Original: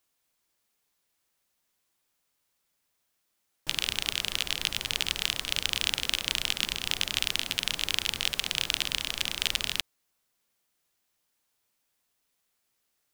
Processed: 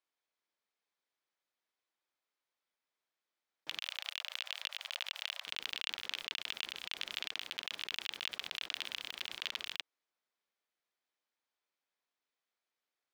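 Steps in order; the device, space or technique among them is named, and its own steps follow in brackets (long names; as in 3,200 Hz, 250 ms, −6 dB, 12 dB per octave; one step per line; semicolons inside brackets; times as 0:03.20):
high-pass filter 130 Hz 6 dB per octave
early digital voice recorder (band-pass filter 290–3,900 Hz; one scale factor per block 5 bits)
0:03.82–0:05.47: Butterworth high-pass 540 Hz 72 dB per octave
notch filter 2,800 Hz, Q 17
level −8.5 dB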